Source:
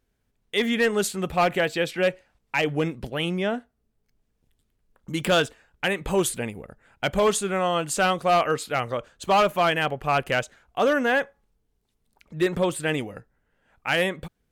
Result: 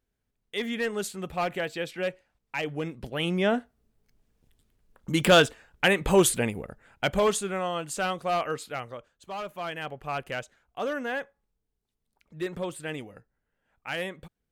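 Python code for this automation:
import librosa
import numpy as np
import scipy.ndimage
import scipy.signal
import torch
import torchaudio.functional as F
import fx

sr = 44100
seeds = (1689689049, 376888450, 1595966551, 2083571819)

y = fx.gain(x, sr, db=fx.line((2.84, -7.5), (3.57, 3.0), (6.59, 3.0), (7.75, -7.0), (8.65, -7.0), (9.29, -17.5), (9.96, -9.5)))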